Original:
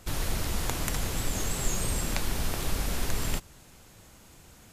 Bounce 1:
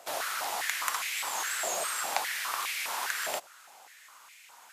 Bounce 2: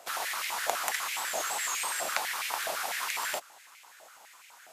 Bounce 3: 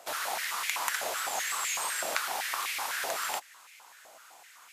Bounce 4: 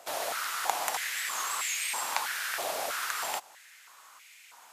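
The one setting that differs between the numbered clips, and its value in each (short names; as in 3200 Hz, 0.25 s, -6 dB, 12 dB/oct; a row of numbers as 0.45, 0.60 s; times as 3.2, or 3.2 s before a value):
stepped high-pass, rate: 4.9, 12, 7.9, 3.1 Hz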